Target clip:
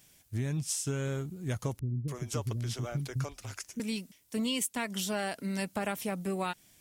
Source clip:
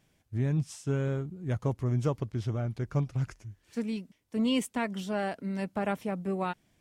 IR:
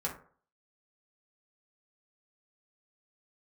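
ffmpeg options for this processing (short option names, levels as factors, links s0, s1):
-filter_complex "[0:a]crystalizer=i=5.5:c=0,acompressor=threshold=0.0355:ratio=6,asettb=1/sr,asplit=3[s0][s1][s2];[s0]atrim=end=1.794[s3];[s1]atrim=start=1.79:end=3.8,asetpts=PTS-STARTPTS,afade=t=in:d=0.004:c=qsin,afade=t=out:st=2.006:d=0.004:c=qsin,acrossover=split=320[s4][s5];[s5]adelay=290[s6];[s4][s6]amix=inputs=2:normalize=0,atrim=end_sample=88641[s7];[s2]atrim=start=3.796[s8];[s3][s7]acrossfade=d=0.004:c1=hsin:c2=qsin[s9];[s9][s8]acrossfade=d=0.004:c1=qsin:c2=hsin"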